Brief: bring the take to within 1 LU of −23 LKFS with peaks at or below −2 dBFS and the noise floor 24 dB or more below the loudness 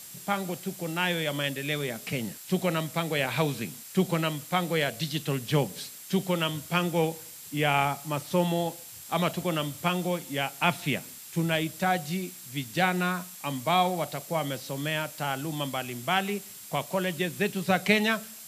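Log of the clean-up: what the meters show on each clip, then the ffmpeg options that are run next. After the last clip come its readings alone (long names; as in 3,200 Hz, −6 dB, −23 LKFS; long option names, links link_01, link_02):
interfering tone 7,600 Hz; level of the tone −52 dBFS; background noise floor −45 dBFS; target noise floor −53 dBFS; integrated loudness −29.0 LKFS; sample peak −9.0 dBFS; target loudness −23.0 LKFS
→ -af "bandreject=frequency=7600:width=30"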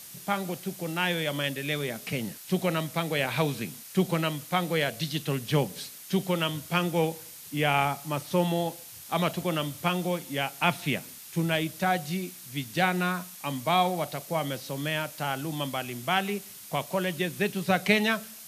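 interfering tone none found; background noise floor −46 dBFS; target noise floor −53 dBFS
→ -af "afftdn=noise_reduction=7:noise_floor=-46"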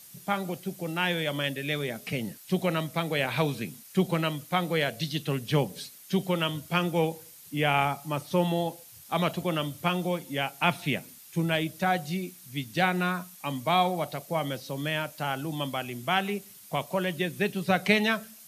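background noise floor −50 dBFS; target noise floor −53 dBFS
→ -af "afftdn=noise_reduction=6:noise_floor=-50"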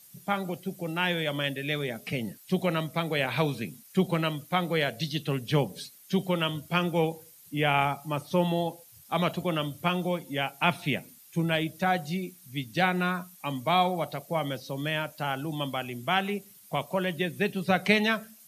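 background noise floor −54 dBFS; integrated loudness −29.0 LKFS; sample peak −9.0 dBFS; target loudness −23.0 LKFS
→ -af "volume=6dB"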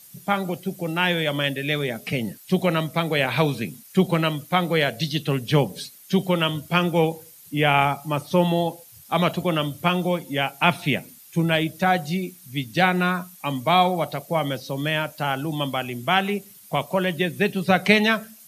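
integrated loudness −23.0 LKFS; sample peak −3.0 dBFS; background noise floor −48 dBFS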